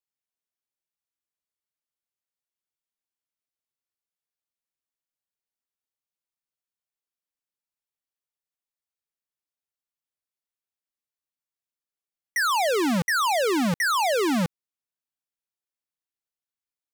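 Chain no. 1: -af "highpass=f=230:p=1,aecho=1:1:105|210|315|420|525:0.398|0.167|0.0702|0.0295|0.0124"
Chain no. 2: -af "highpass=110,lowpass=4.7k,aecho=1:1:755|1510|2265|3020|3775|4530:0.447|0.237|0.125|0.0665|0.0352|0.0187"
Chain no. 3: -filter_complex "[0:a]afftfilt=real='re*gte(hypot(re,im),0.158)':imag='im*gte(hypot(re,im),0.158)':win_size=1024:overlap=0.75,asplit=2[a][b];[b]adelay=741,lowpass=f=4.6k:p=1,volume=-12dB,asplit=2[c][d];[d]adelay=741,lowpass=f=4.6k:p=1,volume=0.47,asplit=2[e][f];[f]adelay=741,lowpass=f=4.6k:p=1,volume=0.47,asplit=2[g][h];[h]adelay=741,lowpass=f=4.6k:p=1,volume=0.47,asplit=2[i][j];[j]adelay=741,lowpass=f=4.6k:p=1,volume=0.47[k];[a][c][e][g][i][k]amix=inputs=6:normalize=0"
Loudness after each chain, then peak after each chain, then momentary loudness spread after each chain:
-23.0, -24.5, -24.5 LUFS; -13.5, -12.0, -18.0 dBFS; 8, 18, 18 LU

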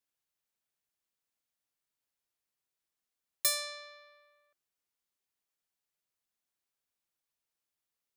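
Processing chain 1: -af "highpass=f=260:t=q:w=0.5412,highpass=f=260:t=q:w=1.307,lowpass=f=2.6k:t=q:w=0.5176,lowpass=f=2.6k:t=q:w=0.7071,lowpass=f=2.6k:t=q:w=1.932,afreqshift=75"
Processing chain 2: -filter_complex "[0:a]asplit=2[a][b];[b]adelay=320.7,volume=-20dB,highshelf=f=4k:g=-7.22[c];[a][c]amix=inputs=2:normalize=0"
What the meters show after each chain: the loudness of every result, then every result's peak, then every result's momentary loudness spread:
-43.5, -32.0 LUFS; -28.5, -16.0 dBFS; 17, 14 LU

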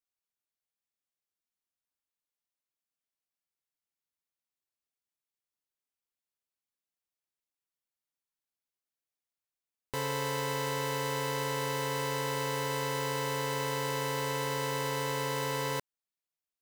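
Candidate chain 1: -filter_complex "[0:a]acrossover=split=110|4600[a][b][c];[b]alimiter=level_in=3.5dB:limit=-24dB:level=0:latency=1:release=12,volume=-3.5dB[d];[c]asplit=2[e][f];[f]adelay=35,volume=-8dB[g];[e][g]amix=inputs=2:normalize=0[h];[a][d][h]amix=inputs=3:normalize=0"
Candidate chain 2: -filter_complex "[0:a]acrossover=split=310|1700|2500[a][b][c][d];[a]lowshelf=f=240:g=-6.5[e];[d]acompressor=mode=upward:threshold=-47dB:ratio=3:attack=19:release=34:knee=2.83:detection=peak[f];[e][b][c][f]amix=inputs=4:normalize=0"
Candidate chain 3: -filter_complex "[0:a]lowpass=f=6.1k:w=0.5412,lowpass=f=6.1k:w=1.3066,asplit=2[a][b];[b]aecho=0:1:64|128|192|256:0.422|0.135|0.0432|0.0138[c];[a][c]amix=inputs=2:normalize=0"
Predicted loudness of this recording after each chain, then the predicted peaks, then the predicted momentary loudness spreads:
-34.5, -33.0, -32.5 LUFS; -23.5, -11.0, -21.5 dBFS; 1, 0, 1 LU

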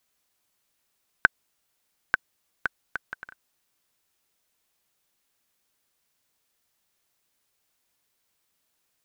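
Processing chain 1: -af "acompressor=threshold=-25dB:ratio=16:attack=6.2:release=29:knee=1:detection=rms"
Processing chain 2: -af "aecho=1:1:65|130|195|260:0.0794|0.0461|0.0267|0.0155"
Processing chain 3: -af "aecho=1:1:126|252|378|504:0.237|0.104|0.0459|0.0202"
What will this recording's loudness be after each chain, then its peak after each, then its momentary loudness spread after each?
-40.5, -30.5, -31.0 LUFS; -8.0, -1.0, -1.0 dBFS; 5, 18, 19 LU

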